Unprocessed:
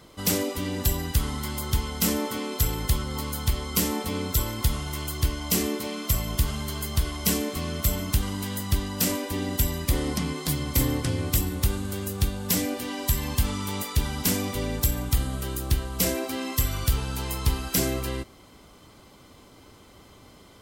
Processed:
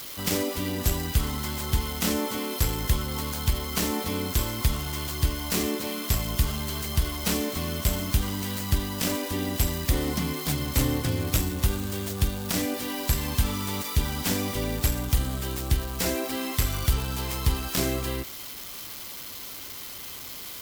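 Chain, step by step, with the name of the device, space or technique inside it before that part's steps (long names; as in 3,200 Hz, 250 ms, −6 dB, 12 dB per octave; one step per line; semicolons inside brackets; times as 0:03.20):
budget class-D amplifier (gap after every zero crossing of 0.064 ms; spike at every zero crossing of −24 dBFS)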